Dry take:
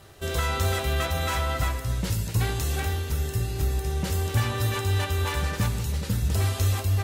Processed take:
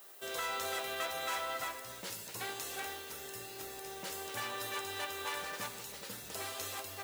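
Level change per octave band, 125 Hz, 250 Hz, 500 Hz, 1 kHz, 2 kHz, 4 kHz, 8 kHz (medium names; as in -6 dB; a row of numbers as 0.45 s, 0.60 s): -33.5 dB, -18.5 dB, -10.5 dB, -7.5 dB, -7.5 dB, -7.5 dB, -7.5 dB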